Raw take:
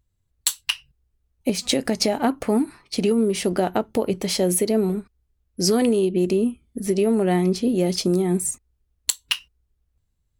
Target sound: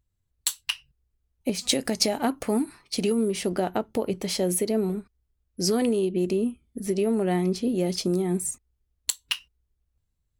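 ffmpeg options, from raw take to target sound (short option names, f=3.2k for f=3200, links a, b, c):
-filter_complex "[0:a]asettb=1/sr,asplit=3[a][b][c];[a]atrim=end=1.614[d];[b]atrim=start=1.61:end=3.3,asetpts=PTS-STARTPTS,afade=t=in:d=0.004:c=qsin,afade=t=out:st=1.686:d=0.004:c=qsin,highshelf=f=3.7k:g=6.5[e];[c]atrim=start=3.296[f];[d][e]acrossfade=d=0.004:c1=hsin:c2=qsin[g];[g][f]acrossfade=d=0.004:c1=qsin:c2=hsin,volume=-4.5dB"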